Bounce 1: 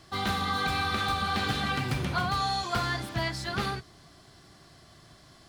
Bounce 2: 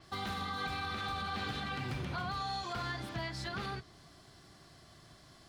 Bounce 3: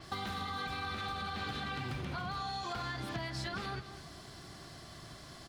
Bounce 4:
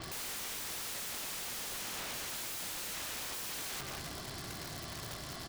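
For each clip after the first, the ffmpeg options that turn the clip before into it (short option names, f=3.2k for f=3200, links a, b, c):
-af "alimiter=level_in=1.5dB:limit=-24dB:level=0:latency=1:release=137,volume=-1.5dB,adynamicequalizer=threshold=0.00178:dfrequency=6500:dqfactor=0.7:tfrequency=6500:tqfactor=0.7:attack=5:release=100:ratio=0.375:range=3.5:mode=cutabove:tftype=highshelf,volume=-3.5dB"
-af "acompressor=threshold=-44dB:ratio=6,aecho=1:1:207:0.251,volume=7.5dB"
-af "aeval=exprs='(mod(141*val(0)+1,2)-1)/141':c=same,volume=7dB"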